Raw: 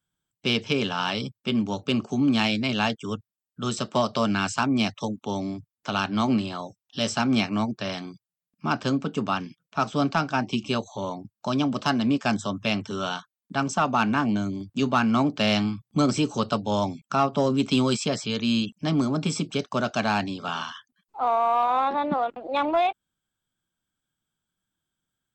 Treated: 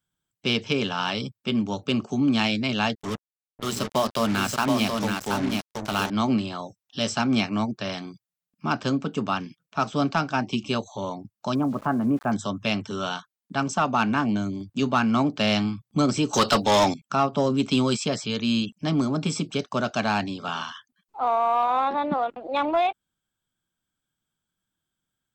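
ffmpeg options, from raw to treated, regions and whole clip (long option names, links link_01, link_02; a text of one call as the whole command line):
ffmpeg -i in.wav -filter_complex "[0:a]asettb=1/sr,asplit=3[link_01][link_02][link_03];[link_01]atrim=end=2.954[link_04];[link_02]atrim=start=2.95:end=6.1,asetpts=PTS-STARTPTS,afade=type=in:duration=0.004:curve=qsin,afade=type=out:start_time=3.146:duration=0.004:curve=qsin,bandreject=frequency=60:width_type=h:width=6,bandreject=frequency=120:width_type=h:width=6,bandreject=frequency=180:width_type=h:width=6,bandreject=frequency=240:width_type=h:width=6,aecho=1:1:726:0.596,atrim=end_sample=138915,acrusher=bits=4:mix=0:aa=0.5[link_05];[link_03]atrim=start=6.096[link_06];[link_04][link_05]acrossfade=duration=0.004:curve1=hsin:curve2=qsin[link_07];[link_07][link_06]acrossfade=duration=0.004:curve1=qsin:curve2=hsin,asettb=1/sr,asplit=3[link_08][link_09][link_10];[link_08]atrim=end=11.554[link_11];[link_09]atrim=start=11.55:end=12.32,asetpts=PTS-STARTPTS,afade=type=in:duration=0.004:curve=qsin,afade=type=out:start_time=0.766:duration=0.004:curve=qsin,lowpass=frequency=1500:width=0.5412,lowpass=frequency=1500:width=1.3066,aeval=exprs='val(0)*gte(abs(val(0)),0.00668)':channel_layout=same[link_12];[link_10]atrim=start=12.316[link_13];[link_11][link_12]acrossfade=duration=0.004:curve1=hsin:curve2=qsin[link_14];[link_14][link_13]acrossfade=duration=0.004:curve1=qsin:curve2=hsin,asettb=1/sr,asplit=3[link_15][link_16][link_17];[link_15]atrim=end=16.334[link_18];[link_16]atrim=start=16.33:end=16.94,asetpts=PTS-STARTPTS,afade=type=in:duration=0.004:curve=qsin,afade=type=out:start_time=0.606:duration=0.004:curve=qsin,highshelf=frequency=3900:gain=7,asplit=2[link_19][link_20];[link_20]highpass=frequency=720:poles=1,volume=22dB,asoftclip=type=tanh:threshold=-10.5dB[link_21];[link_19][link_21]amix=inputs=2:normalize=0,lowpass=frequency=5400:poles=1,volume=-6dB[link_22];[link_17]atrim=start=16.936[link_23];[link_18][link_22]acrossfade=duration=0.004:curve1=hsin:curve2=qsin[link_24];[link_24][link_23]acrossfade=duration=0.004:curve1=qsin:curve2=hsin" out.wav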